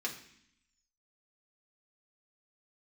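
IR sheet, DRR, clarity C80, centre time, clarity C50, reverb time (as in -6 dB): -2.0 dB, 13.0 dB, 17 ms, 9.5 dB, 0.65 s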